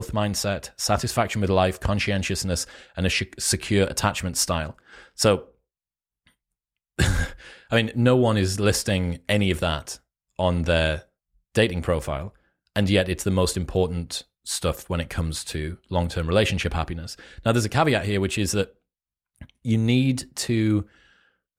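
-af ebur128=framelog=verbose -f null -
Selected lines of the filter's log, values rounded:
Integrated loudness:
  I:         -23.9 LUFS
  Threshold: -34.5 LUFS
Loudness range:
  LRA:         3.5 LU
  Threshold: -44.7 LUFS
  LRA low:   -26.5 LUFS
  LRA high:  -23.0 LUFS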